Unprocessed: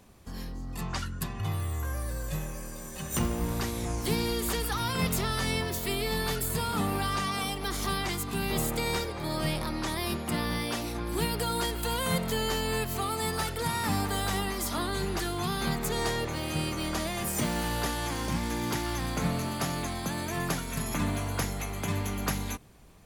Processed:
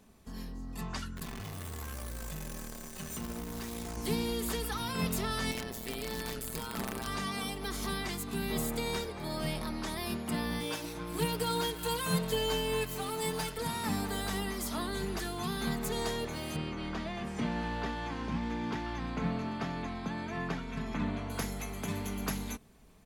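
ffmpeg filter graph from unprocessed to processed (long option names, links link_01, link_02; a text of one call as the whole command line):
ffmpeg -i in.wav -filter_complex "[0:a]asettb=1/sr,asplit=3[link_01][link_02][link_03];[link_01]atrim=end=1.164[link_04];[link_02]atrim=start=1.16:end=3.97,asetpts=PTS-STARTPTS,afade=type=in:duration=0.004:curve=qsin,afade=type=out:start_time=2.806:duration=0.004:curve=qsin,acompressor=threshold=-32dB:ratio=5:attack=3.2:release=140:knee=1:detection=peak,acrusher=bits=7:dc=4:mix=0:aa=0.000001[link_05];[link_03]atrim=start=3.966[link_06];[link_04][link_05]acrossfade=duration=0.004:curve1=hsin:curve2=qsin[link_07];[link_07][link_06]acrossfade=duration=0.004:curve1=qsin:curve2=hsin,asettb=1/sr,asplit=3[link_08][link_09][link_10];[link_08]atrim=end=5.514[link_11];[link_09]atrim=start=5.51:end=7.07,asetpts=PTS-STARTPTS,afade=type=in:duration=0.004:curve=qsin,afade=type=out:start_time=1.556:duration=0.004:curve=qsin,tremolo=f=120:d=0.889,aeval=exprs='(mod(13.3*val(0)+1,2)-1)/13.3':channel_layout=same[link_12];[link_10]atrim=start=7.066[link_13];[link_11][link_12]acrossfade=duration=0.004:curve1=hsin:curve2=qsin[link_14];[link_14][link_13]acrossfade=duration=0.004:curve1=qsin:curve2=hsin,asettb=1/sr,asplit=3[link_15][link_16][link_17];[link_15]atrim=end=10.604[link_18];[link_16]atrim=start=10.6:end=13.57,asetpts=PTS-STARTPTS,afade=type=in:duration=0.004:curve=qsin,afade=type=out:start_time=2.966:duration=0.004:curve=qsin,aecho=1:1:6.5:0.88,atrim=end_sample=130977,aeval=exprs='sgn(val(0))*max(abs(val(0))-0.01,0)':channel_layout=same[link_19];[link_17]atrim=start=13.566[link_20];[link_18][link_19]acrossfade=duration=0.004:curve1=hsin:curve2=qsin[link_21];[link_21][link_20]acrossfade=duration=0.004:curve1=qsin:curve2=hsin,asettb=1/sr,asplit=3[link_22][link_23][link_24];[link_22]atrim=end=16.564[link_25];[link_23]atrim=start=16.56:end=21.3,asetpts=PTS-STARTPTS,afade=type=in:duration=0.004:curve=qsin,afade=type=out:start_time=4.736:duration=0.004:curve=qsin,lowpass=3200,bandreject=frequency=620:width=17[link_26];[link_24]atrim=start=21.296[link_27];[link_25][link_26]acrossfade=duration=0.004:curve1=hsin:curve2=qsin[link_28];[link_28][link_27]acrossfade=duration=0.004:curve1=qsin:curve2=hsin,equalizer=frequency=260:width=1.8:gain=3,aecho=1:1:4.6:0.36,volume=-5.5dB" out.wav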